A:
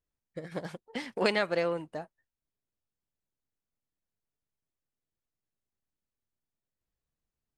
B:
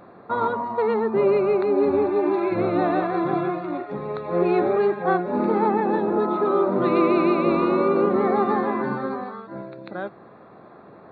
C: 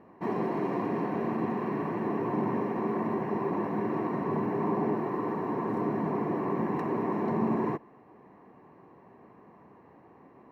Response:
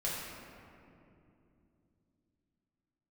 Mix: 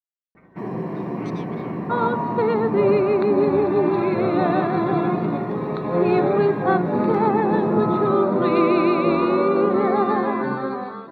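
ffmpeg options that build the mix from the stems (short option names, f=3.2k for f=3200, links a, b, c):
-filter_complex "[0:a]afwtdn=0.00891,aeval=exprs='val(0)*sin(2*PI*1700*n/s)':c=same,volume=-16.5dB[a];[1:a]adelay=1600,volume=1dB,asplit=2[b][c];[c]volume=-22.5dB[d];[2:a]lowshelf=f=240:g=11,bandreject=f=6.5k:w=25,adelay=350,volume=-5.5dB,asplit=2[e][f];[f]volume=-5.5dB[g];[3:a]atrim=start_sample=2205[h];[d][g]amix=inputs=2:normalize=0[i];[i][h]afir=irnorm=-1:irlink=0[j];[a][b][e][j]amix=inputs=4:normalize=0,adynamicequalizer=threshold=0.0126:dfrequency=2700:dqfactor=0.7:tfrequency=2700:tqfactor=0.7:attack=5:release=100:ratio=0.375:range=1.5:mode=boostabove:tftype=highshelf"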